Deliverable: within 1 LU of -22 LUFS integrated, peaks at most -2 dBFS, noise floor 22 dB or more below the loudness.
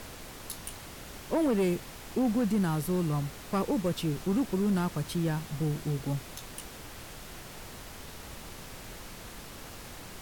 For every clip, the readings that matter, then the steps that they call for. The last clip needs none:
clipped 1.1%; flat tops at -22.0 dBFS; noise floor -46 dBFS; noise floor target -53 dBFS; loudness -31.0 LUFS; peak -22.0 dBFS; loudness target -22.0 LUFS
-> clip repair -22 dBFS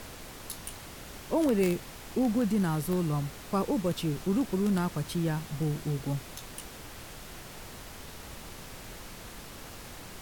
clipped 0.0%; noise floor -46 dBFS; noise floor target -53 dBFS
-> noise print and reduce 7 dB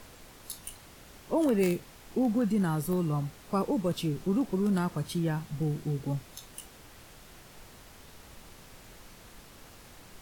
noise floor -53 dBFS; loudness -30.5 LUFS; peak -13.5 dBFS; loudness target -22.0 LUFS
-> gain +8.5 dB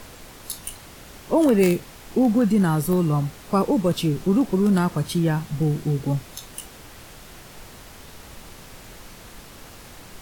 loudness -22.0 LUFS; peak -5.0 dBFS; noise floor -44 dBFS

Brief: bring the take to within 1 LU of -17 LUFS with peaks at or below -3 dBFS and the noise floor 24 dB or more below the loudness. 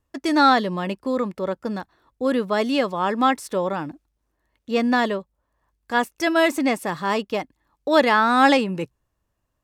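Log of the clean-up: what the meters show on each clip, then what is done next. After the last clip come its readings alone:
loudness -21.5 LUFS; peak -4.0 dBFS; loudness target -17.0 LUFS
-> gain +4.5 dB; limiter -3 dBFS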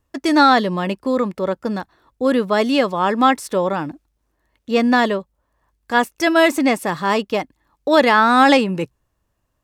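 loudness -17.5 LUFS; peak -3.0 dBFS; noise floor -71 dBFS

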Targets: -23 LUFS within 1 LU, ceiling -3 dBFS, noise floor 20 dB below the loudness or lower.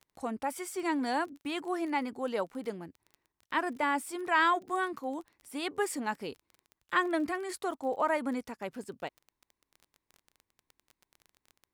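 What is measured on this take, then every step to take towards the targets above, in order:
ticks 22/s; loudness -33.0 LUFS; peak -14.5 dBFS; loudness target -23.0 LUFS
-> de-click; gain +10 dB

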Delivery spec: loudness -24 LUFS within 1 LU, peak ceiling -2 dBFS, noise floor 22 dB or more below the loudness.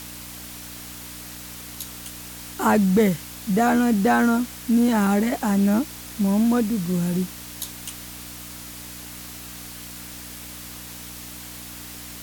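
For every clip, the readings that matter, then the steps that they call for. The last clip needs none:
hum 60 Hz; harmonics up to 300 Hz; hum level -43 dBFS; noise floor -38 dBFS; noise floor target -44 dBFS; loudness -22.0 LUFS; peak -8.0 dBFS; loudness target -24.0 LUFS
-> de-hum 60 Hz, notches 5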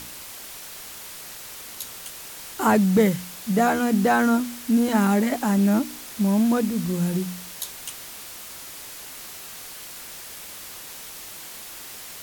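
hum none; noise floor -39 dBFS; noise floor target -45 dBFS
-> denoiser 6 dB, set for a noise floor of -39 dBFS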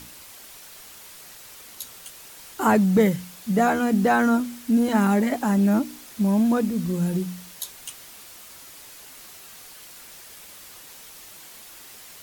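noise floor -45 dBFS; loudness -22.0 LUFS; peak -7.0 dBFS; loudness target -24.0 LUFS
-> gain -2 dB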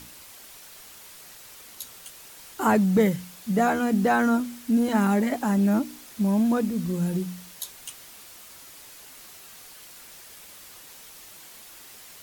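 loudness -24.0 LUFS; peak -9.0 dBFS; noise floor -47 dBFS

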